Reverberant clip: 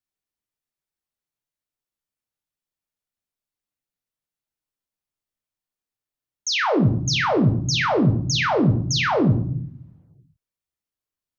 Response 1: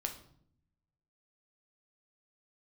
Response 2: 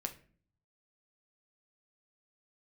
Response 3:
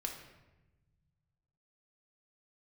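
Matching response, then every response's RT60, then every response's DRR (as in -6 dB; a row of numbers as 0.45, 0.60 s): 1; 0.65, 0.45, 1.1 s; 3.5, 4.5, 1.5 dB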